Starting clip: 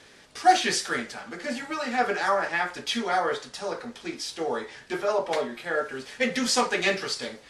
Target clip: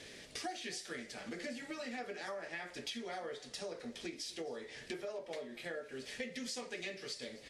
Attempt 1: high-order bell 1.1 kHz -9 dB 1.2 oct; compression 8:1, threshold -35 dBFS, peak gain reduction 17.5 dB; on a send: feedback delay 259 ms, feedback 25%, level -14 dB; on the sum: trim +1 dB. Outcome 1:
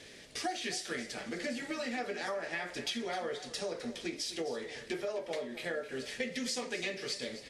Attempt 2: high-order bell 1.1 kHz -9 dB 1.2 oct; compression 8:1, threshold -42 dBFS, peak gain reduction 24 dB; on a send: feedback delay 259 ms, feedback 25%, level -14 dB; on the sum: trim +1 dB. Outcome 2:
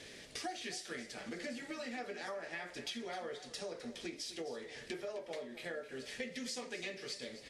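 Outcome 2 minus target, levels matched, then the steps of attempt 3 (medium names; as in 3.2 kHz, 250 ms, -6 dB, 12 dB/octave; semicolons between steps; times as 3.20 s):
echo-to-direct +7.5 dB
high-order bell 1.1 kHz -9 dB 1.2 oct; compression 8:1, threshold -42 dBFS, peak gain reduction 24 dB; on a send: feedback delay 259 ms, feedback 25%, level -21.5 dB; on the sum: trim +1 dB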